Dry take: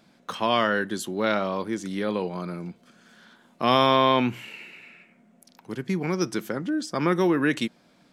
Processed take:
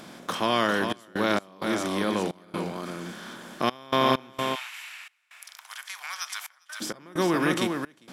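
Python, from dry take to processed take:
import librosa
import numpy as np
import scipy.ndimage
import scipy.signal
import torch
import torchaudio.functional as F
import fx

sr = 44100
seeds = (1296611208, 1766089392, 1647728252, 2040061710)

y = fx.bin_compress(x, sr, power=0.6)
y = fx.high_shelf(y, sr, hz=7000.0, db=8.0)
y = y + 10.0 ** (-5.5 / 20.0) * np.pad(y, (int(401 * sr / 1000.0), 0))[:len(y)]
y = fx.step_gate(y, sr, bpm=65, pattern='xxxx.x.xxx.x', floor_db=-24.0, edge_ms=4.5)
y = fx.bessel_highpass(y, sr, hz=1500.0, order=8, at=(4.54, 6.8), fade=0.02)
y = y * 10.0 ** (-4.5 / 20.0)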